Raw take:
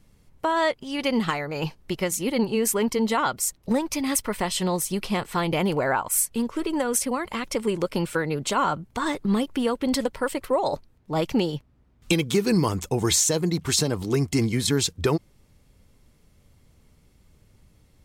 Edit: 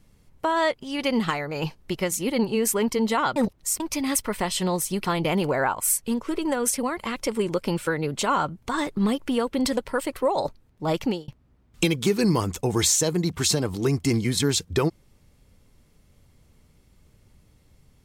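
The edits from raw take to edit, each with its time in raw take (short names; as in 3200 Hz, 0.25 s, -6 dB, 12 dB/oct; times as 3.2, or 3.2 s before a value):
3.36–3.8 reverse
5.05–5.33 cut
11.31–11.56 fade out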